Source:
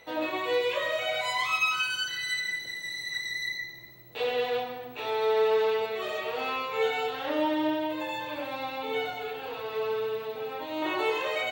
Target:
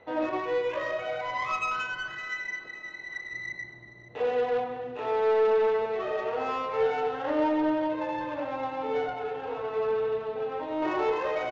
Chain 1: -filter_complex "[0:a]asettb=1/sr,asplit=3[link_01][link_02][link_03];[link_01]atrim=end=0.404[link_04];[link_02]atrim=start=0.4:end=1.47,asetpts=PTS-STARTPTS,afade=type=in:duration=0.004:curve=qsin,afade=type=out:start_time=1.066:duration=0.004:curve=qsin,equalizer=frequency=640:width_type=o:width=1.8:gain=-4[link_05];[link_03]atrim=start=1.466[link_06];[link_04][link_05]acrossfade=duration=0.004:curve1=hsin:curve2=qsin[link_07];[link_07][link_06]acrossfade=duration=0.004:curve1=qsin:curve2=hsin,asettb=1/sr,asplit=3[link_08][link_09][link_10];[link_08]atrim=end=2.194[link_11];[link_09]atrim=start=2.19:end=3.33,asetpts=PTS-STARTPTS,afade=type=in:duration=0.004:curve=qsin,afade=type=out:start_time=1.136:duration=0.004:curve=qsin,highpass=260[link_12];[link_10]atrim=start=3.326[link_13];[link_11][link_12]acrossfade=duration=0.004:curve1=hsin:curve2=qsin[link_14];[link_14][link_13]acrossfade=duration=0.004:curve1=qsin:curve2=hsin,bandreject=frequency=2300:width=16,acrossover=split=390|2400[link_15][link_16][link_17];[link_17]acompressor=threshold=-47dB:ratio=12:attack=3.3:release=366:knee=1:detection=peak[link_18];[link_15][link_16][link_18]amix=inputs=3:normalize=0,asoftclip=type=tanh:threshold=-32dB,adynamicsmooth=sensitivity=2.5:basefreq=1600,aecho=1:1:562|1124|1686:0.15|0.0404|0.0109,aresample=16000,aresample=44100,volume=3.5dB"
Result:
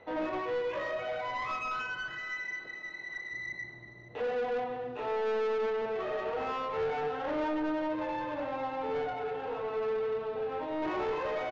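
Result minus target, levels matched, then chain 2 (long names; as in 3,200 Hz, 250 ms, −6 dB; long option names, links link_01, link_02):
soft clipping: distortion +12 dB
-filter_complex "[0:a]asettb=1/sr,asplit=3[link_01][link_02][link_03];[link_01]atrim=end=0.404[link_04];[link_02]atrim=start=0.4:end=1.47,asetpts=PTS-STARTPTS,afade=type=in:duration=0.004:curve=qsin,afade=type=out:start_time=1.066:duration=0.004:curve=qsin,equalizer=frequency=640:width_type=o:width=1.8:gain=-4[link_05];[link_03]atrim=start=1.466[link_06];[link_04][link_05]acrossfade=duration=0.004:curve1=hsin:curve2=qsin[link_07];[link_07][link_06]acrossfade=duration=0.004:curve1=qsin:curve2=hsin,asettb=1/sr,asplit=3[link_08][link_09][link_10];[link_08]atrim=end=2.194[link_11];[link_09]atrim=start=2.19:end=3.33,asetpts=PTS-STARTPTS,afade=type=in:duration=0.004:curve=qsin,afade=type=out:start_time=1.136:duration=0.004:curve=qsin,highpass=260[link_12];[link_10]atrim=start=3.326[link_13];[link_11][link_12]acrossfade=duration=0.004:curve1=hsin:curve2=qsin[link_14];[link_14][link_13]acrossfade=duration=0.004:curve1=qsin:curve2=hsin,bandreject=frequency=2300:width=16,acrossover=split=390|2400[link_15][link_16][link_17];[link_17]acompressor=threshold=-47dB:ratio=12:attack=3.3:release=366:knee=1:detection=peak[link_18];[link_15][link_16][link_18]amix=inputs=3:normalize=0,asoftclip=type=tanh:threshold=-20.5dB,adynamicsmooth=sensitivity=2.5:basefreq=1600,aecho=1:1:562|1124|1686:0.15|0.0404|0.0109,aresample=16000,aresample=44100,volume=3.5dB"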